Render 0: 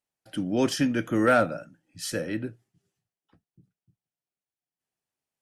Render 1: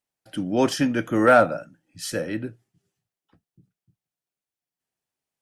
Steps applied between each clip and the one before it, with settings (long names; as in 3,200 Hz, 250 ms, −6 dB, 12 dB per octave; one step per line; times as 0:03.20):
dynamic equaliser 840 Hz, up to +7 dB, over −35 dBFS, Q 0.93
level +1.5 dB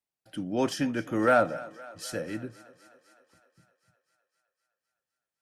feedback echo with a high-pass in the loop 256 ms, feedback 69%, high-pass 310 Hz, level −19 dB
level −6.5 dB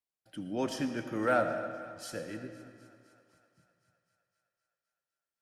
convolution reverb RT60 1.8 s, pre-delay 40 ms, DRR 7.5 dB
level −6 dB